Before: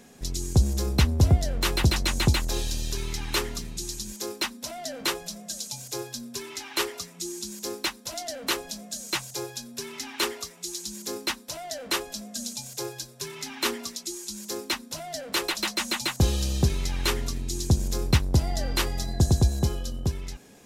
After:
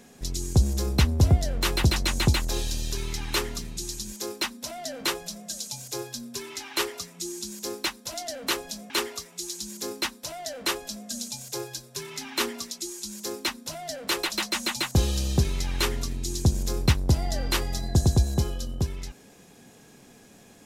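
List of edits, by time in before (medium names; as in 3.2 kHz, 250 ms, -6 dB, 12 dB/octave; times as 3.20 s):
8.90–10.15 s: delete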